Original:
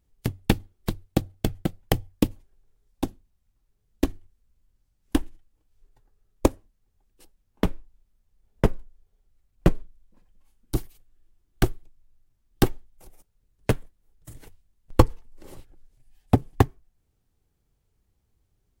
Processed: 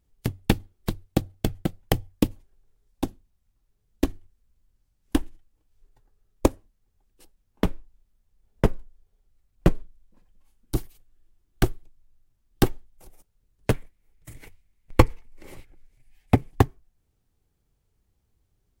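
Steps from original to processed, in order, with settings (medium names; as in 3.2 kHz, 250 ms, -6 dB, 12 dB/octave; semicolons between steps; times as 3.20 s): 13.74–16.51 s: peaking EQ 2.2 kHz +12 dB 0.48 oct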